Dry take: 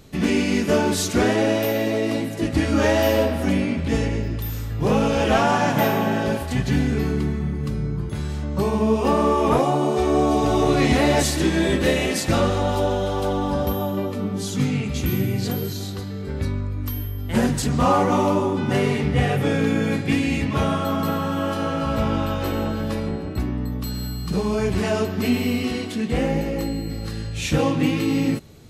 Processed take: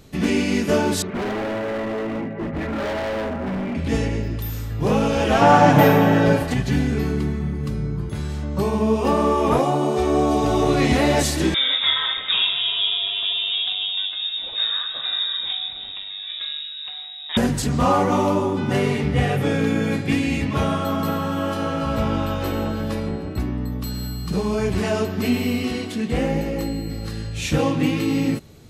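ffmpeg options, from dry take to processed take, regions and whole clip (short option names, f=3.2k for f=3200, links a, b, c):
-filter_complex "[0:a]asettb=1/sr,asplit=3[a][b][c];[a]atrim=end=1.024[d];[b]atrim=start=1.02:end=3.75,asetpts=PTS-STARTPTS,afade=t=in:d=0.004:c=qsin,afade=t=out:st=2.726:d=0.004:c=qsin,lowpass=f=2k:w=0.5412,lowpass=f=2k:w=1.3066,aecho=1:1:5.1:0.52,atrim=end_sample=120393,asoftclip=type=hard:threshold=-23.5dB[e];[c]atrim=start=3.746[f];[d][e]acrossfade=d=0.004:c1=hsin:c2=qsin[g];[g][f]acrossfade=d=0.004:c1=qsin:c2=hsin,asettb=1/sr,asplit=3[h][i][j];[h]atrim=end=5.414[k];[i]atrim=start=5.41:end=6.54,asetpts=PTS-STARTPTS,afade=t=in:d=0.004:c=qsin,afade=t=out:st=1.126:d=0.004:c=qsin,highshelf=f=3.3k:g=-8.5,aecho=1:1:6.7:0.68,atrim=end_sample=49833,acontrast=52[l];[j]atrim=start=6.536[m];[k][l]acrossfade=d=0.004:c1=hsin:c2=qsin[n];[n][m]acrossfade=d=0.004:c1=qsin:c2=hsin,asettb=1/sr,asplit=3[o][p][q];[o]atrim=end=11.544[r];[p]atrim=start=11.54:end=17.37,asetpts=PTS-STARTPTS,afade=t=in:d=0.004:c=qsin,afade=t=out:st=5.826:d=0.004:c=qsin,highpass=150,lowpass=f=3.3k:t=q:w=0.5098,lowpass=f=3.3k:t=q:w=0.6013,lowpass=f=3.3k:t=q:w=0.9,lowpass=f=3.3k:t=q:w=2.563,afreqshift=-3900[s];[q]atrim=start=17.366[t];[r][s]acrossfade=d=0.004:c1=hsin:c2=qsin[u];[u][t]acrossfade=d=0.004:c1=qsin:c2=hsin"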